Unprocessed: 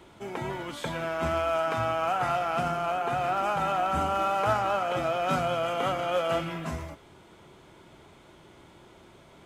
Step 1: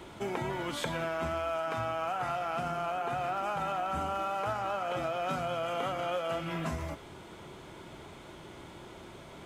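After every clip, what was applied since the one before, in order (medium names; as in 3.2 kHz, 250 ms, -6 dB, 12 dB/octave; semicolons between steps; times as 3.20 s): compression 6:1, threshold -36 dBFS, peak gain reduction 14.5 dB; trim +5 dB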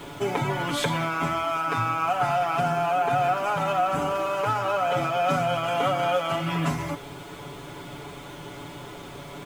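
comb 7 ms, depth 97%; bit crusher 10-bit; trim +6 dB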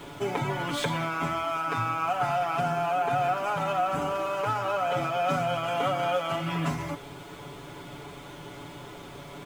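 median filter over 3 samples; trim -3 dB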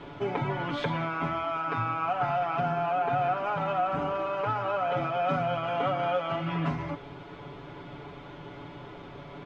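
distance through air 250 m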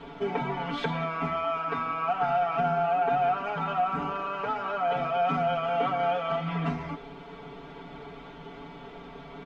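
comb 4.4 ms, depth 93%; trim -2 dB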